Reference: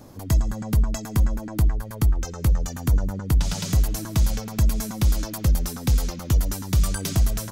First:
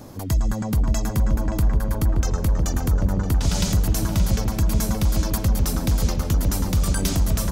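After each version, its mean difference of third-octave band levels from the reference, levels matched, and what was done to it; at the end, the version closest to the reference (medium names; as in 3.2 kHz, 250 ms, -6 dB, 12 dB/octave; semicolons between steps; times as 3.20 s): 3.5 dB: peak limiter -18.5 dBFS, peak gain reduction 7 dB; filtered feedback delay 575 ms, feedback 57%, low-pass 1.3 kHz, level -3.5 dB; trim +5 dB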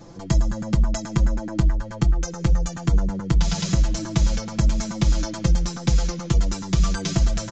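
5.5 dB: comb 5.9 ms, depth 98%; resampled via 16 kHz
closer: first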